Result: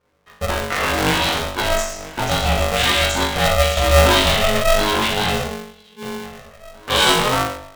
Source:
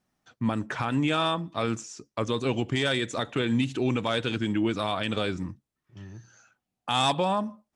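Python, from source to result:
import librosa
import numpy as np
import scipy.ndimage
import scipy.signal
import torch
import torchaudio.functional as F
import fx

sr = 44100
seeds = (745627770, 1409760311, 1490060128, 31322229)

p1 = fx.cycle_switch(x, sr, every=2, mode='muted', at=(0.9, 1.45), fade=0.02)
p2 = fx.high_shelf(p1, sr, hz=2500.0, db=6.0)
p3 = fx.echo_feedback(p2, sr, ms=981, feedback_pct=41, wet_db=-18.0)
p4 = fx.env_lowpass(p3, sr, base_hz=2000.0, full_db=-21.0)
p5 = fx.level_steps(p4, sr, step_db=20)
p6 = p4 + (p5 * librosa.db_to_amplitude(3.0))
p7 = fx.cheby2_bandstop(p6, sr, low_hz=250.0, high_hz=1600.0, order=4, stop_db=40, at=(5.47, 6.03))
p8 = fx.doubler(p7, sr, ms=12.0, db=-2.0)
p9 = fx.room_flutter(p8, sr, wall_m=3.5, rt60_s=0.67)
p10 = fx.leveller(p9, sr, passes=1, at=(3.77, 4.63))
y = p10 * np.sign(np.sin(2.0 * np.pi * 320.0 * np.arange(len(p10)) / sr))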